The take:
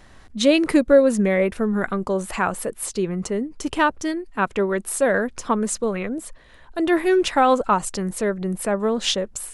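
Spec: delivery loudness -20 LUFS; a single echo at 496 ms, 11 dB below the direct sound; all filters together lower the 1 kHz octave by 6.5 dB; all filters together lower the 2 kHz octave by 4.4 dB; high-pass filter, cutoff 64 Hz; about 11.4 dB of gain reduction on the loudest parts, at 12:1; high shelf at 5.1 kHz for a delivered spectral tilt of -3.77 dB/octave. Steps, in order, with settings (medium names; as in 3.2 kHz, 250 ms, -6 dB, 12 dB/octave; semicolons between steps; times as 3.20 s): high-pass 64 Hz; peaking EQ 1 kHz -8 dB; peaking EQ 2 kHz -3.5 dB; treble shelf 5.1 kHz +5 dB; compression 12:1, threshold -23 dBFS; delay 496 ms -11 dB; trim +8 dB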